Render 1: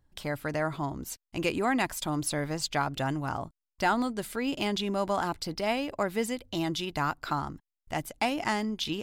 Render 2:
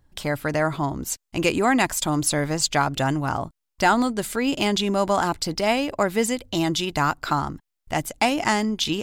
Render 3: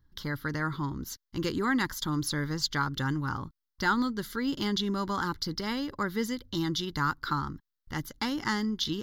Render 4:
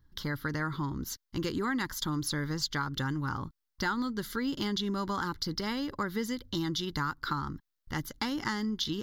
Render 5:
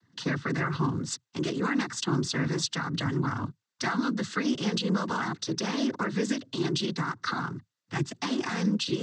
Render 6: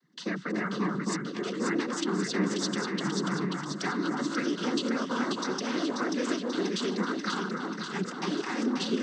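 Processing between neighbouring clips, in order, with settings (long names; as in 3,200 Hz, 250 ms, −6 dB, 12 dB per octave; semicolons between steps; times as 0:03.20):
dynamic equaliser 7,200 Hz, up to +6 dB, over −54 dBFS, Q 2.1; level +7.5 dB
phaser with its sweep stopped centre 2,500 Hz, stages 6; level −4.5 dB
downward compressor 3 to 1, threshold −31 dBFS, peak gain reduction 8 dB; level +1.5 dB
brickwall limiter −25 dBFS, peak gain reduction 8.5 dB; cochlear-implant simulation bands 16; level +6 dB
frequency shifter +45 Hz; delay that swaps between a low-pass and a high-pass 268 ms, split 1,400 Hz, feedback 78%, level −2 dB; level −3.5 dB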